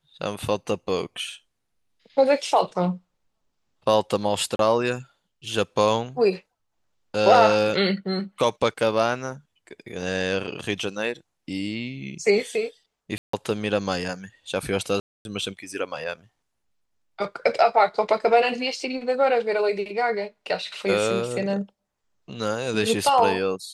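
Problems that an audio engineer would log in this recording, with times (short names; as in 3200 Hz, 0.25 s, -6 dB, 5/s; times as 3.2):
4.56–4.59 gap 32 ms
13.18–13.33 gap 0.154 s
15–15.25 gap 0.251 s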